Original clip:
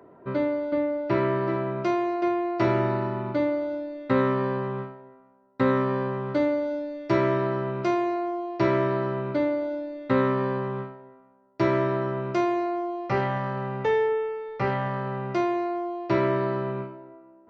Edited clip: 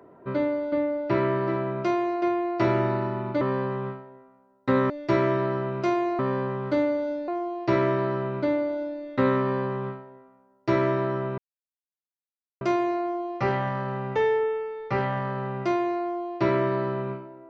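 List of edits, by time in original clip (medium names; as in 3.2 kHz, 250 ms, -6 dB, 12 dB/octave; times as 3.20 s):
3.41–4.33 s: delete
5.82–6.91 s: move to 8.20 s
12.30 s: insert silence 1.23 s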